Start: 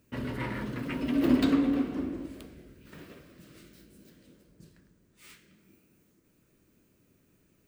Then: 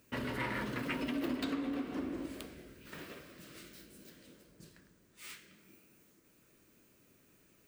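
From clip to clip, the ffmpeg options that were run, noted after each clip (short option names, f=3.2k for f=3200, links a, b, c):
-af "acompressor=threshold=-33dB:ratio=5,lowshelf=f=370:g=-9.5,volume=4.5dB"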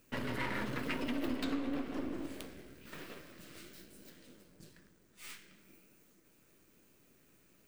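-af "aeval=exprs='if(lt(val(0),0),0.447*val(0),val(0))':c=same,flanger=delay=1.9:depth=9.9:regen=79:speed=1:shape=triangular,volume=6.5dB"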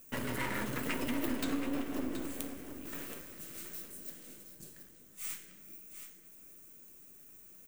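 -af "aexciter=amount=2:drive=8.8:freq=6.3k,aecho=1:1:725:0.316,volume=1dB"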